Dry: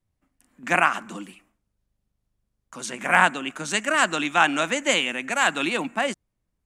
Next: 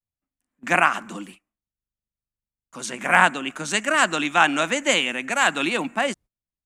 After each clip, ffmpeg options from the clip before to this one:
ffmpeg -i in.wav -af "agate=range=-20dB:threshold=-45dB:ratio=16:detection=peak,volume=1.5dB" out.wav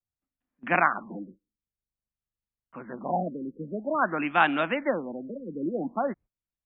ffmpeg -i in.wav -af "aemphasis=mode=reproduction:type=75fm,afftfilt=real='re*lt(b*sr/1024,520*pow(4000/520,0.5+0.5*sin(2*PI*0.5*pts/sr)))':imag='im*lt(b*sr/1024,520*pow(4000/520,0.5+0.5*sin(2*PI*0.5*pts/sr)))':win_size=1024:overlap=0.75,volume=-3.5dB" out.wav

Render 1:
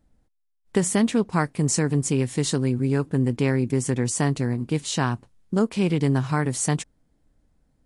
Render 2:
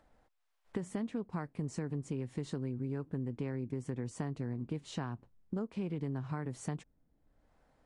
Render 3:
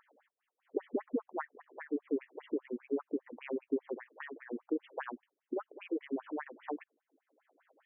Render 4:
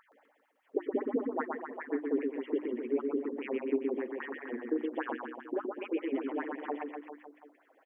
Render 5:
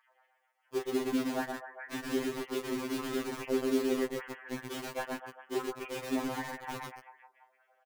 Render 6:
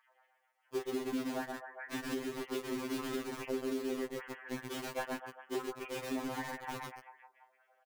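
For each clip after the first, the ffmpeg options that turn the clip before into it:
ffmpeg -i in.wav -filter_complex "[0:a]acrossover=split=540[link_01][link_02];[link_02]acompressor=mode=upward:threshold=-47dB:ratio=2.5[link_03];[link_01][link_03]amix=inputs=2:normalize=0,lowpass=frequency=1300:poles=1,acompressor=threshold=-27dB:ratio=6,volume=-7dB" out.wav
ffmpeg -i in.wav -af "afftfilt=real='re*between(b*sr/1024,330*pow(2500/330,0.5+0.5*sin(2*PI*5*pts/sr))/1.41,330*pow(2500/330,0.5+0.5*sin(2*PI*5*pts/sr))*1.41)':imag='im*between(b*sr/1024,330*pow(2500/330,0.5+0.5*sin(2*PI*5*pts/sr))/1.41,330*pow(2500/330,0.5+0.5*sin(2*PI*5*pts/sr))*1.41)':win_size=1024:overlap=0.75,volume=9.5dB" out.wav
ffmpeg -i in.wav -filter_complex "[0:a]bandreject=frequency=50:width_type=h:width=6,bandreject=frequency=100:width_type=h:width=6,bandreject=frequency=150:width_type=h:width=6,bandreject=frequency=200:width_type=h:width=6,bandreject=frequency=250:width_type=h:width=6,bandreject=frequency=300:width_type=h:width=6,bandreject=frequency=350:width_type=h:width=6,asplit=2[link_01][link_02];[link_02]aecho=0:1:120|252|397.2|556.9|732.6:0.631|0.398|0.251|0.158|0.1[link_03];[link_01][link_03]amix=inputs=2:normalize=0,volume=3dB" out.wav
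ffmpeg -i in.wav -filter_complex "[0:a]asplit=2[link_01][link_02];[link_02]adelay=35,volume=-9.5dB[link_03];[link_01][link_03]amix=inputs=2:normalize=0,acrossover=split=580[link_04][link_05];[link_04]acrusher=bits=5:mix=0:aa=0.000001[link_06];[link_06][link_05]amix=inputs=2:normalize=0,afftfilt=real='re*2.45*eq(mod(b,6),0)':imag='im*2.45*eq(mod(b,6),0)':win_size=2048:overlap=0.75,volume=1dB" out.wav
ffmpeg -i in.wav -af "alimiter=level_in=2dB:limit=-24dB:level=0:latency=1:release=372,volume=-2dB,volume=-1dB" out.wav

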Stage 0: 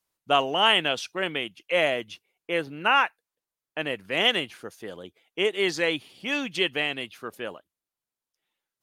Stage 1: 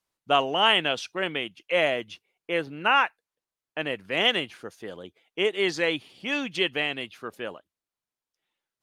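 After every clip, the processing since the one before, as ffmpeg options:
ffmpeg -i in.wav -af "highshelf=frequency=10000:gain=-10" out.wav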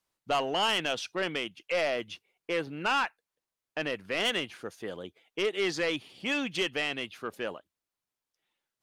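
ffmpeg -i in.wav -filter_complex "[0:a]asplit=2[link_01][link_02];[link_02]alimiter=limit=-18dB:level=0:latency=1:release=320,volume=1dB[link_03];[link_01][link_03]amix=inputs=2:normalize=0,asoftclip=type=tanh:threshold=-15.5dB,volume=-6dB" out.wav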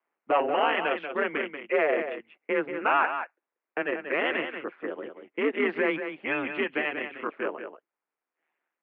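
ffmpeg -i in.wav -af "aeval=exprs='val(0)*sin(2*PI*79*n/s)':channel_layout=same,aecho=1:1:185:0.376,highpass=frequency=360:width_type=q:width=0.5412,highpass=frequency=360:width_type=q:width=1.307,lowpass=frequency=2400:width_type=q:width=0.5176,lowpass=frequency=2400:width_type=q:width=0.7071,lowpass=frequency=2400:width_type=q:width=1.932,afreqshift=-64,volume=8dB" out.wav

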